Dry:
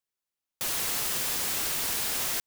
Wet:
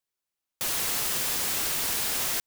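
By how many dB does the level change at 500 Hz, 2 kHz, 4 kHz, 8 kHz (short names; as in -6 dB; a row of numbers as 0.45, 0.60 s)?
+1.5, +1.5, +1.5, +1.5 dB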